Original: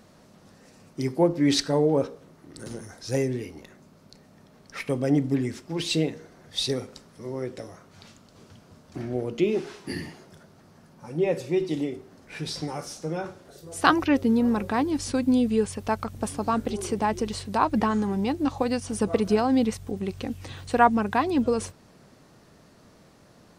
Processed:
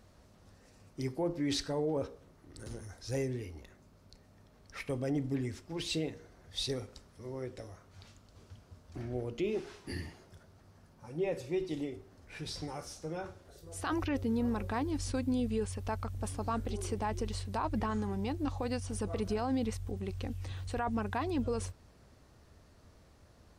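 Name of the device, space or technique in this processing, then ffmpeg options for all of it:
car stereo with a boomy subwoofer: -af "lowshelf=frequency=110:width_type=q:width=1.5:gain=11,alimiter=limit=-16.5dB:level=0:latency=1:release=12,volume=-8dB"

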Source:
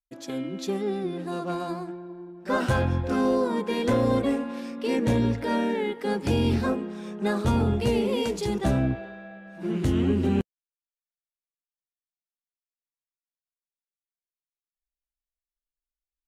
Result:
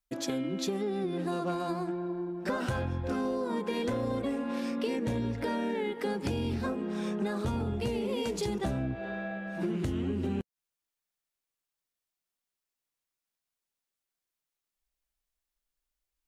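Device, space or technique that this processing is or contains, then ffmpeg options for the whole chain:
serial compression, leveller first: -af "acompressor=threshold=-26dB:ratio=2,acompressor=threshold=-36dB:ratio=6,volume=6.5dB"

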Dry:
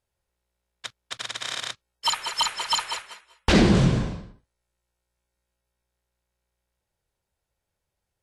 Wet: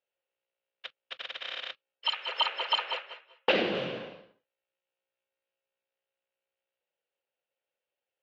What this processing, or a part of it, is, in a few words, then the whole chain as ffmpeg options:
phone earpiece: -filter_complex "[0:a]asettb=1/sr,asplit=3[link_01][link_02][link_03];[link_01]atrim=end=2.284[link_04];[link_02]atrim=start=2.28:end=3.51,asetpts=PTS-STARTPTS,afade=type=in:duration=0.004:curve=qsin,afade=type=out:start_time=1.226:duration=0.004:curve=qsin,equalizer=frequency=510:width_type=o:width=2.7:gain=9[link_05];[link_03]atrim=start=3.506[link_06];[link_04][link_05]acrossfade=duration=0.004:curve1=hsin:curve2=qsin[link_07];[link_07][link_06]acrossfade=duration=0.004:curve1=qsin:curve2=hsin,highpass=420,equalizer=frequency=520:width_type=q:width=4:gain=8,equalizer=frequency=1000:width_type=q:width=4:gain=-5,equalizer=frequency=2800:width_type=q:width=4:gain=9,lowpass=frequency=3700:width=0.5412,lowpass=frequency=3700:width=1.3066,volume=-7dB"

